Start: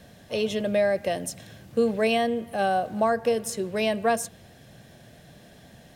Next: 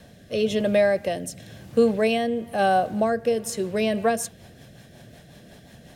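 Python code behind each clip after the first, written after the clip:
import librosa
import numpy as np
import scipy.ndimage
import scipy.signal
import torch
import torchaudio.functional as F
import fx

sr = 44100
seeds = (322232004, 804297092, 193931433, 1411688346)

y = fx.rotary_switch(x, sr, hz=1.0, then_hz=5.5, switch_at_s=3.44)
y = F.gain(torch.from_numpy(y), 4.5).numpy()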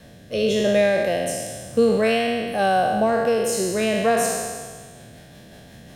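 y = fx.spec_trails(x, sr, decay_s=1.61)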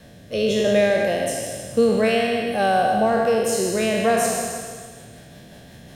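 y = fx.echo_feedback(x, sr, ms=156, feedback_pct=46, wet_db=-9)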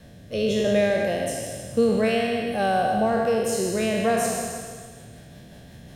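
y = fx.low_shelf(x, sr, hz=180.0, db=6.5)
y = F.gain(torch.from_numpy(y), -4.0).numpy()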